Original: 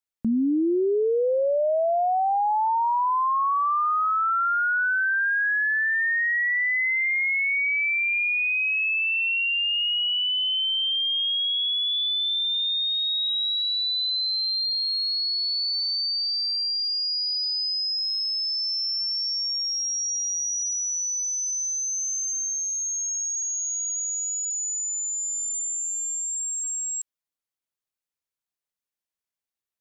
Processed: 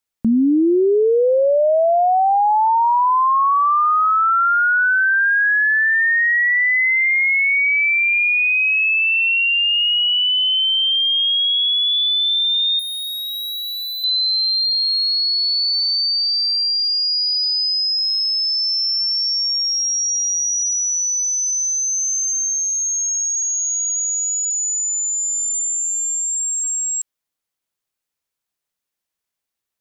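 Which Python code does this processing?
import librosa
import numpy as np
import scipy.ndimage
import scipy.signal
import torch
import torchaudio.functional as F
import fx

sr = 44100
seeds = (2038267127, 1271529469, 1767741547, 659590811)

y = fx.clip_hard(x, sr, threshold_db=-33.0, at=(12.79, 14.04))
y = y * librosa.db_to_amplitude(7.5)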